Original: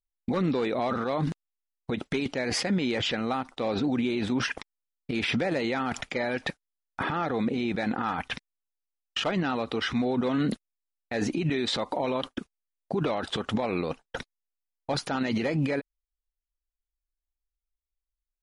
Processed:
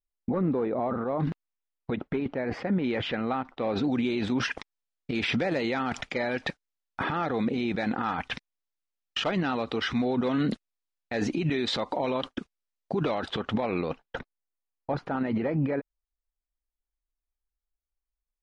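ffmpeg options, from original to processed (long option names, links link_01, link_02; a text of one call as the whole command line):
ffmpeg -i in.wav -af "asetnsamples=nb_out_samples=441:pad=0,asendcmd='1.2 lowpass f 2700;1.96 lowpass f 1500;2.84 lowpass f 2500;3.76 lowpass f 6200;13.29 lowpass f 3600;14.19 lowpass f 1500',lowpass=1100" out.wav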